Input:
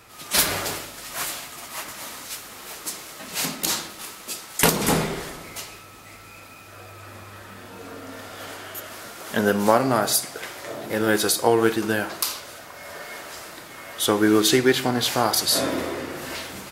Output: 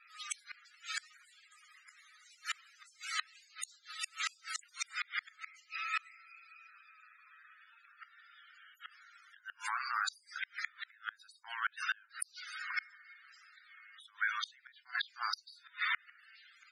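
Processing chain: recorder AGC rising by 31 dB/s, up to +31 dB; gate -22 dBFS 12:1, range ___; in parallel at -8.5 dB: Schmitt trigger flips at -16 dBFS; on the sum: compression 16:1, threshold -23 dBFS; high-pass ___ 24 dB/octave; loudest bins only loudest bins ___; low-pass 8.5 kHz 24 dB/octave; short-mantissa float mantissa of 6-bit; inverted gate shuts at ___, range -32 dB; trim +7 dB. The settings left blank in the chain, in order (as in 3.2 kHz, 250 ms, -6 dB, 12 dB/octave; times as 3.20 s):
-13 dB, 1.4 kHz, 32, -29 dBFS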